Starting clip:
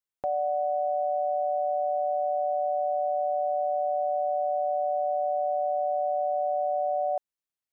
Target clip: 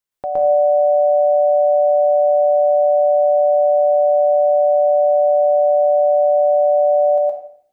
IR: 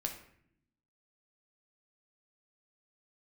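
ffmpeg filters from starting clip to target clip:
-filter_complex "[0:a]asplit=2[s0][s1];[1:a]atrim=start_sample=2205,adelay=116[s2];[s1][s2]afir=irnorm=-1:irlink=0,volume=1.33[s3];[s0][s3]amix=inputs=2:normalize=0,volume=1.78"

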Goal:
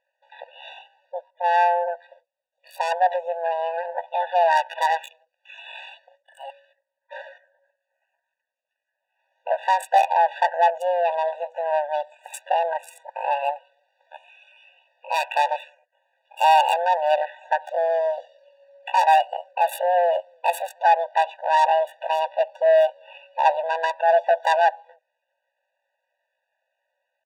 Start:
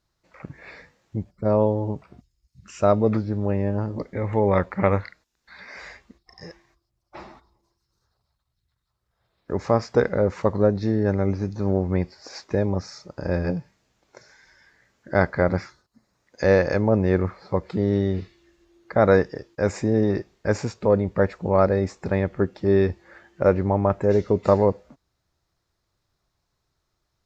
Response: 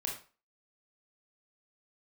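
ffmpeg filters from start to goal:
-filter_complex "[0:a]highshelf=f=5600:g=6,acrossover=split=120|2100[s0][s1][s2];[s0]aecho=1:1:174.9|285.7:0.316|0.891[s3];[s2]acrusher=bits=4:mix=0:aa=0.5[s4];[s3][s1][s4]amix=inputs=3:normalize=0,asoftclip=type=tanh:threshold=0.15,asetrate=72056,aresample=44100,atempo=0.612027,afftfilt=real='re*eq(mod(floor(b*sr/1024/490),2),1)':imag='im*eq(mod(floor(b*sr/1024/490),2),1)':win_size=1024:overlap=0.75,volume=2.37"

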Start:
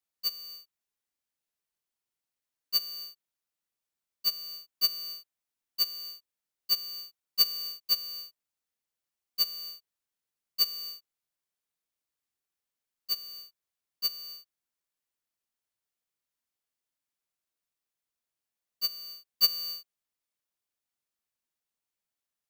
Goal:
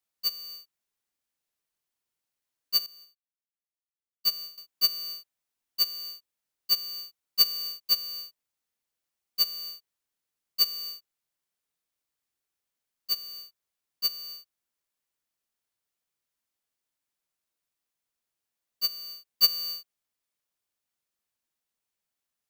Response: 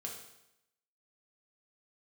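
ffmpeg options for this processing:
-filter_complex "[0:a]asettb=1/sr,asplit=3[s0][s1][s2];[s0]atrim=end=2.864[s3];[s1]atrim=start=2.86:end=4.58,asetpts=PTS-STARTPTS,afade=t=in:d=0.004:c=qsin,afade=t=out:st=1.716:d=0.004:c=qsin,agate=range=0.126:threshold=0.01:ratio=16:detection=peak[s4];[s2]atrim=start=4.576[s5];[s3][s4]acrossfade=d=0.004:c1=hsin:c2=qsin[s6];[s6][s5]acrossfade=d=0.004:c1=qsin:c2=hsin,volume=1.33"

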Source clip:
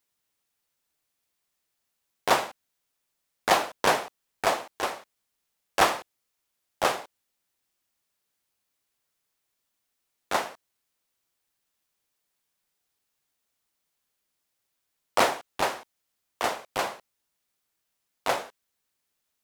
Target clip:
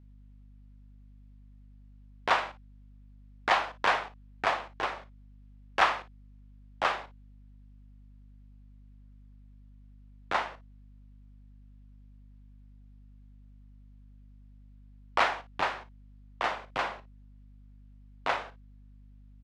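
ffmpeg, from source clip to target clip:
-filter_complex "[0:a]lowpass=3000,lowshelf=f=460:g=8.5,acrossover=split=850|1700[s0][s1][s2];[s0]acompressor=threshold=0.01:ratio=6[s3];[s3][s1][s2]amix=inputs=3:normalize=0,aeval=exprs='val(0)+0.00224*(sin(2*PI*50*n/s)+sin(2*PI*2*50*n/s)/2+sin(2*PI*3*50*n/s)/3+sin(2*PI*4*50*n/s)/4+sin(2*PI*5*50*n/s)/5)':c=same,asplit=2[s4][s5];[s5]aecho=0:1:38|56:0.168|0.15[s6];[s4][s6]amix=inputs=2:normalize=0"

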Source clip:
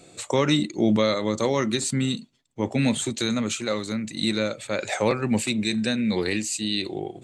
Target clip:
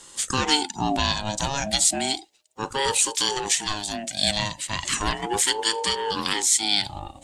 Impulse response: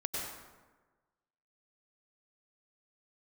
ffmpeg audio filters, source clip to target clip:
-filter_complex "[0:a]asplit=2[s0][s1];[s1]asetrate=52444,aresample=44100,atempo=0.840896,volume=0.158[s2];[s0][s2]amix=inputs=2:normalize=0,aexciter=amount=4.2:drive=2.9:freq=2200,aeval=exprs='val(0)*sin(2*PI*550*n/s+550*0.25/0.34*sin(2*PI*0.34*n/s))':c=same,volume=0.841"

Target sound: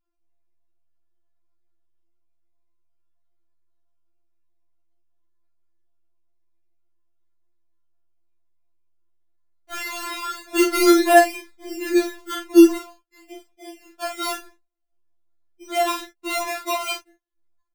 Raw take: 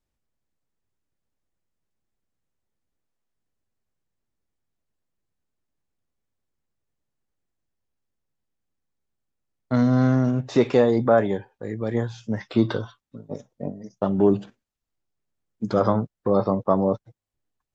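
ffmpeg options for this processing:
-filter_complex "[0:a]asettb=1/sr,asplit=3[s0][s1][s2];[s0]atrim=end=10.504[s3];[s1]atrim=start=10.5:end=12.74,asetpts=PTS-STARTPTS,afade=t=in:d=0.004:c=qsin,afade=t=out:st=2.236:d=0.004:c=qsin,lowshelf=f=310:g=11[s4];[s2]atrim=start=12.736[s5];[s3][s4]acrossfade=d=0.004:c1=hsin:c2=qsin[s6];[s6][s5]acrossfade=d=0.004:c1=qsin:c2=hsin,acrusher=samples=22:mix=1:aa=0.000001:lfo=1:lforange=13.2:lforate=0.5,flanger=delay=17:depth=6.5:speed=1.2,asplit=2[s7][s8];[s8]adelay=39,volume=0.501[s9];[s7][s9]amix=inputs=2:normalize=0,afftfilt=real='re*4*eq(mod(b,16),0)':imag='im*4*eq(mod(b,16),0)':win_size=2048:overlap=0.75,volume=1.41"

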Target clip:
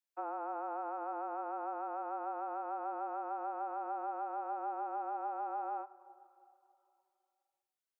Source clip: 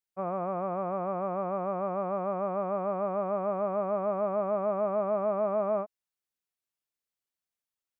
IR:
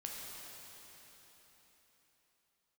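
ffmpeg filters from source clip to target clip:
-filter_complex "[0:a]highpass=140,afreqshift=160,acrossover=split=380|1500[s0][s1][s2];[s0]acompressor=threshold=0.002:ratio=4[s3];[s1]acompressor=threshold=0.0178:ratio=4[s4];[s2]acompressor=threshold=0.00112:ratio=4[s5];[s3][s4][s5]amix=inputs=3:normalize=0,asplit=2[s6][s7];[1:a]atrim=start_sample=2205,asetrate=61740,aresample=44100,highshelf=f=2100:g=-11.5[s8];[s7][s8]afir=irnorm=-1:irlink=0,volume=0.398[s9];[s6][s9]amix=inputs=2:normalize=0,volume=0.631"

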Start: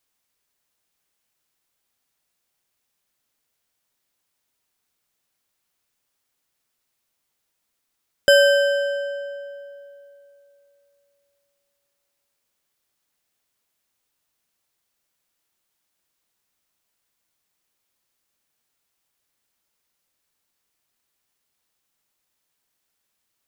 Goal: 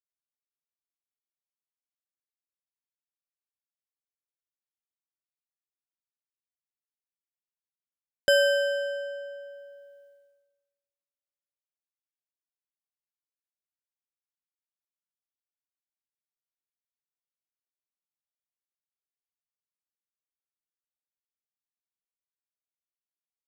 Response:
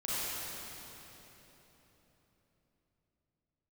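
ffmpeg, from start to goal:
-af "agate=range=0.0224:threshold=0.00447:ratio=3:detection=peak,volume=0.447"

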